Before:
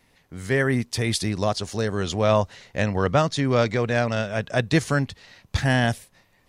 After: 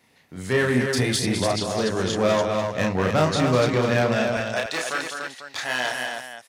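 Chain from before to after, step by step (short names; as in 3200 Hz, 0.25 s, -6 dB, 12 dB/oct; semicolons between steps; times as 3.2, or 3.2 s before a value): echo 0.204 s -8.5 dB; hard clip -16.5 dBFS, distortion -13 dB; HPF 120 Hz 12 dB/oct, from 4.37 s 670 Hz; loudspeakers at several distances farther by 11 m -3 dB, 100 m -5 dB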